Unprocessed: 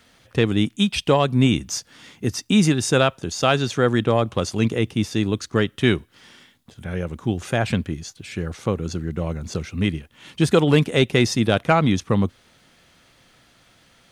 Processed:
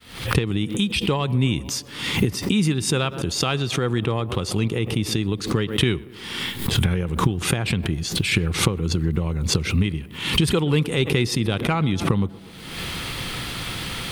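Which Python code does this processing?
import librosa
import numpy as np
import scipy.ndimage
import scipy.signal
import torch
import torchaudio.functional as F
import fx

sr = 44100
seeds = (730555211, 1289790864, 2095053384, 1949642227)

p1 = fx.fade_in_head(x, sr, length_s=0.79)
p2 = fx.recorder_agc(p1, sr, target_db=-10.0, rise_db_per_s=54.0, max_gain_db=30)
p3 = fx.graphic_eq_15(p2, sr, hz=(250, 630, 1600, 6300), db=(-5, -11, -6, -9))
p4 = p3 + fx.echo_tape(p3, sr, ms=122, feedback_pct=88, wet_db=-19.5, lp_hz=1700.0, drive_db=3.0, wow_cents=35, dry=0)
p5 = fx.pre_swell(p4, sr, db_per_s=97.0)
y = F.gain(torch.from_numpy(p5), -1.0).numpy()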